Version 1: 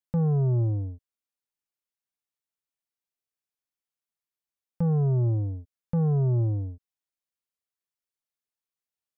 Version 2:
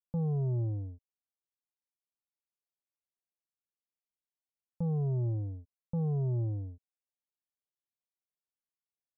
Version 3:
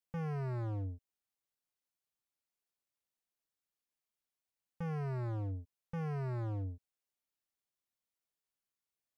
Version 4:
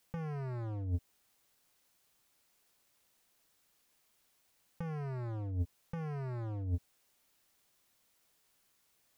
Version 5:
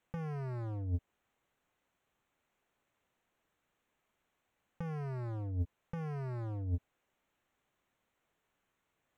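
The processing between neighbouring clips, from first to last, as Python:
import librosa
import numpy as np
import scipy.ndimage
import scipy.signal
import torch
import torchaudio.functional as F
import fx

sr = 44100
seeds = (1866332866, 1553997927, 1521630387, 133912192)

y1 = scipy.signal.sosfilt(scipy.signal.butter(4, 1000.0, 'lowpass', fs=sr, output='sos'), x)
y1 = F.gain(torch.from_numpy(y1), -7.5).numpy()
y2 = np.clip(y1, -10.0 ** (-38.5 / 20.0), 10.0 ** (-38.5 / 20.0))
y2 = F.gain(torch.from_numpy(y2), 2.0).numpy()
y3 = fx.over_compress(y2, sr, threshold_db=-47.0, ratio=-1.0)
y3 = F.gain(torch.from_numpy(y3), 9.5).numpy()
y4 = fx.wiener(y3, sr, points=9)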